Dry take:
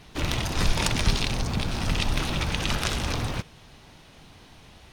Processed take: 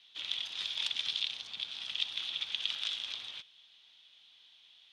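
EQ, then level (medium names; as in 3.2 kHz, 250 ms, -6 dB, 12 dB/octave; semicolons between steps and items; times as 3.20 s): band-pass filter 3.4 kHz, Q 6.7; +2.5 dB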